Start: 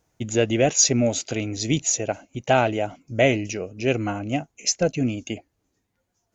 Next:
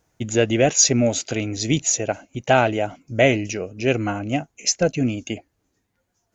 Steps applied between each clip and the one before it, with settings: peaking EQ 1.6 kHz +2.5 dB 0.58 oct; trim +2 dB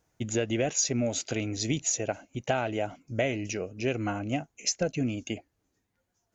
compression 6:1, threshold -18 dBFS, peak gain reduction 8 dB; trim -5.5 dB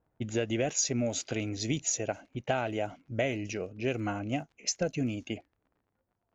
crackle 49 per s -47 dBFS; level-controlled noise filter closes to 1.1 kHz, open at -25 dBFS; trim -2 dB

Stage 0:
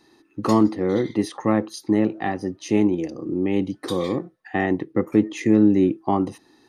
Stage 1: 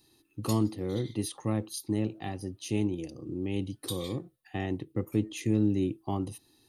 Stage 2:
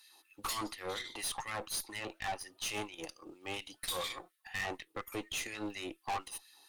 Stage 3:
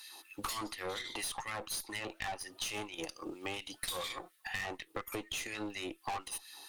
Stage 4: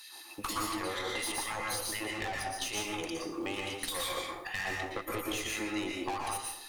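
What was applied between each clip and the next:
FFT filter 120 Hz 0 dB, 180 Hz -10 dB, 1.9 kHz -16 dB, 2.8 kHz -4 dB, 4 kHz -3 dB, 5.8 kHz -6 dB, 11 kHz +8 dB
LFO high-pass sine 4.2 Hz 740–2100 Hz; valve stage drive 40 dB, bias 0.6; trim +7.5 dB
compression 6:1, threshold -47 dBFS, peak gain reduction 13 dB; trim +10 dB
plate-style reverb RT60 0.76 s, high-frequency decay 0.6×, pre-delay 105 ms, DRR -2 dB; trim +1 dB

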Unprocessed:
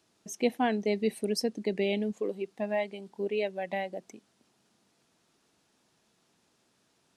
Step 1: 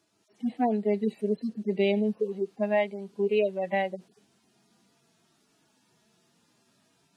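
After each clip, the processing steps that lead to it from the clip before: harmonic-percussive separation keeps harmonic; gain riding 2 s; trim +4.5 dB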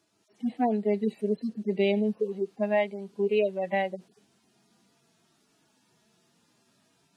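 no audible change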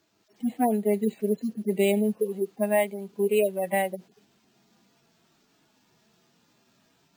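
careless resampling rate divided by 4×, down none, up hold; trim +2 dB

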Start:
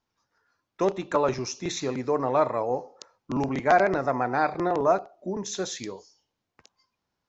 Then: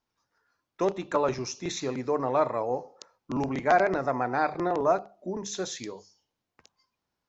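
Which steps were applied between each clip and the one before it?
hum notches 50/100/150/200 Hz; trim -2 dB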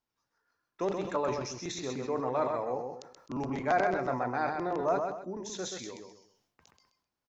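feedback delay 129 ms, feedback 21%, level -5.5 dB; decay stretcher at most 75 dB/s; trim -6 dB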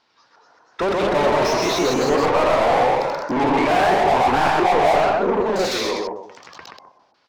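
LFO low-pass square 1.4 Hz 780–4600 Hz; overdrive pedal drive 35 dB, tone 1.9 kHz, clips at -12.5 dBFS; ever faster or slower copies 251 ms, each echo +1 st, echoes 3

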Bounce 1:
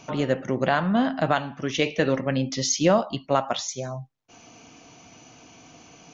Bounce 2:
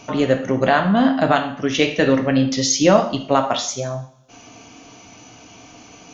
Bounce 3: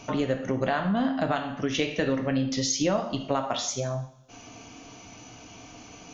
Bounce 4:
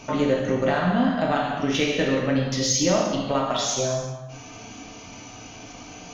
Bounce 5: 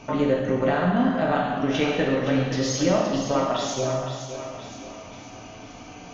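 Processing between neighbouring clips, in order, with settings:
two-slope reverb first 0.51 s, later 1.6 s, from -24 dB, DRR 5 dB; trim +5 dB
bass shelf 76 Hz +8 dB; compression 2.5:1, threshold -22 dBFS, peak gain reduction 10 dB; trim -3.5 dB
in parallel at -12 dB: saturation -27 dBFS, distortion -9 dB; on the sum: gated-style reverb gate 420 ms falling, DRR -1.5 dB
treble shelf 4.2 kHz -11 dB; on a send: thinning echo 518 ms, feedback 49%, high-pass 280 Hz, level -8.5 dB

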